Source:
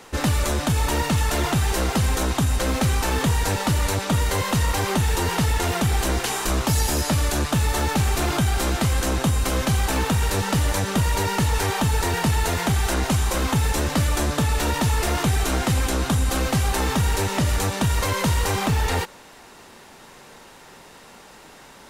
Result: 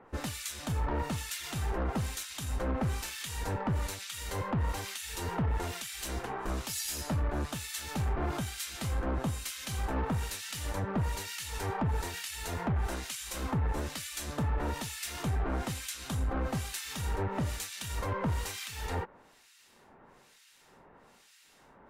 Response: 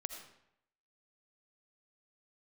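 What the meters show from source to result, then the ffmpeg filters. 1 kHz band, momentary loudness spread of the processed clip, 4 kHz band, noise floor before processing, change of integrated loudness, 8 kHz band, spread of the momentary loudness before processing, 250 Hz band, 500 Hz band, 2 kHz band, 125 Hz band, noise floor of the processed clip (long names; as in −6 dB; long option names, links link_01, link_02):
−12.5 dB, 5 LU, −12.5 dB, −46 dBFS, −12.5 dB, −12.0 dB, 1 LU, −12.5 dB, −12.5 dB, −13.5 dB, −12.5 dB, −61 dBFS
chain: -filter_complex "[0:a]acrossover=split=1800[link_01][link_02];[link_01]aeval=exprs='val(0)*(1-1/2+1/2*cos(2*PI*1.1*n/s))':channel_layout=same[link_03];[link_02]aeval=exprs='val(0)*(1-1/2-1/2*cos(2*PI*1.1*n/s))':channel_layout=same[link_04];[link_03][link_04]amix=inputs=2:normalize=0,aeval=exprs='0.237*(cos(1*acos(clip(val(0)/0.237,-1,1)))-cos(1*PI/2))+0.0531*(cos(3*acos(clip(val(0)/0.237,-1,1)))-cos(3*PI/2))+0.0015*(cos(7*acos(clip(val(0)/0.237,-1,1)))-cos(7*PI/2))':channel_layout=same,asoftclip=type=tanh:threshold=-27.5dB,volume=2dB"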